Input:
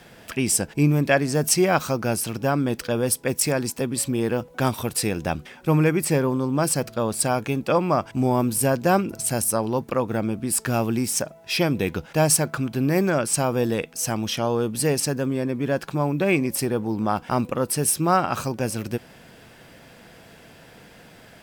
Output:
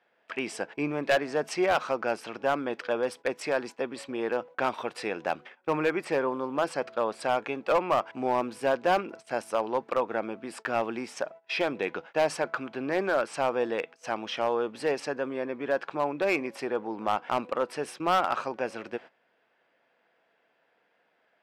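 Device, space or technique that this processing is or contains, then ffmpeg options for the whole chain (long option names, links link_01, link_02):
walkie-talkie: -af "highpass=500,lowpass=2400,asoftclip=type=hard:threshold=-17.5dB,agate=range=-18dB:threshold=-43dB:ratio=16:detection=peak"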